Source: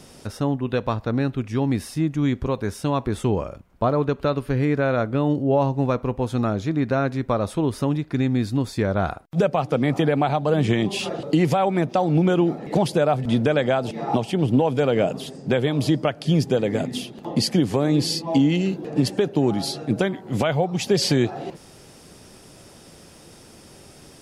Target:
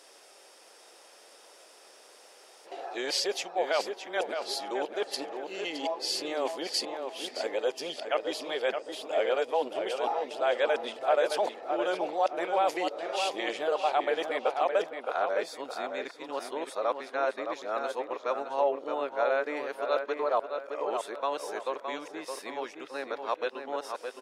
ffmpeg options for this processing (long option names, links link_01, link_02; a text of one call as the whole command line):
ffmpeg -i in.wav -filter_complex "[0:a]areverse,highpass=frequency=480:width=0.5412,highpass=frequency=480:width=1.3066,highshelf=frequency=10000:gain=-6,asplit=2[link_01][link_02];[link_02]adelay=616,lowpass=frequency=3200:poles=1,volume=-6dB,asplit=2[link_03][link_04];[link_04]adelay=616,lowpass=frequency=3200:poles=1,volume=0.36,asplit=2[link_05][link_06];[link_06]adelay=616,lowpass=frequency=3200:poles=1,volume=0.36,asplit=2[link_07][link_08];[link_08]adelay=616,lowpass=frequency=3200:poles=1,volume=0.36[link_09];[link_01][link_03][link_05][link_07][link_09]amix=inputs=5:normalize=0,volume=-4.5dB" out.wav